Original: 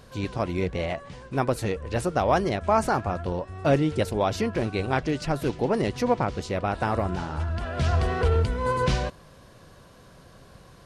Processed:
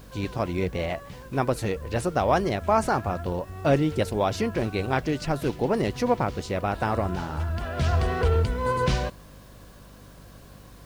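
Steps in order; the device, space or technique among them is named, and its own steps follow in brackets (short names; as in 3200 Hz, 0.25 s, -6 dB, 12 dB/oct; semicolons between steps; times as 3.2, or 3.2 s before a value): video cassette with head-switching buzz (buzz 50 Hz, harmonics 6, -50 dBFS -5 dB/oct; white noise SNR 34 dB)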